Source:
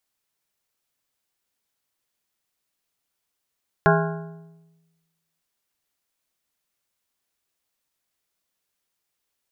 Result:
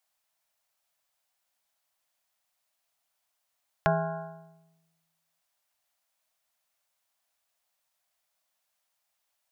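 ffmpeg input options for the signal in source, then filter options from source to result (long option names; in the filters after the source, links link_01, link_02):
-f lavfi -i "aevalsrc='0.15*pow(10,-3*t/1.26)*sin(2*PI*164*t)+0.133*pow(10,-3*t/0.957)*sin(2*PI*410*t)+0.119*pow(10,-3*t/0.831)*sin(2*PI*656*t)+0.106*pow(10,-3*t/0.777)*sin(2*PI*820*t)+0.0944*pow(10,-3*t/0.719)*sin(2*PI*1066*t)+0.0841*pow(10,-3*t/0.663)*sin(2*PI*1394*t)+0.075*pow(10,-3*t/0.652)*sin(2*PI*1476*t)+0.0668*pow(10,-3*t/0.631)*sin(2*PI*1640*t)':duration=1.55:sample_rate=44100"
-filter_complex "[0:a]lowshelf=frequency=520:width_type=q:width=3:gain=-7,acrossover=split=480[link_01][link_02];[link_02]acompressor=threshold=-29dB:ratio=6[link_03];[link_01][link_03]amix=inputs=2:normalize=0"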